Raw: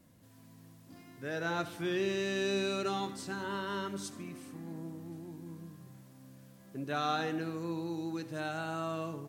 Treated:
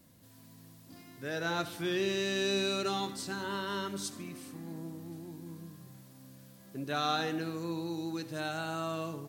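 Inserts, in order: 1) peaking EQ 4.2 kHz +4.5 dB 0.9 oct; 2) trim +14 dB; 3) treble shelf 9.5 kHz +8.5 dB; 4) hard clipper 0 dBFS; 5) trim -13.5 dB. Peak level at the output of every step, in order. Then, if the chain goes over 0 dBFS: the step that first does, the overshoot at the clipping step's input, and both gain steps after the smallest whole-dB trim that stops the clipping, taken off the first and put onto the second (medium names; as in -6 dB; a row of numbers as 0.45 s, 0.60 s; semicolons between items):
-19.0 dBFS, -5.0 dBFS, -4.5 dBFS, -4.5 dBFS, -18.0 dBFS; nothing clips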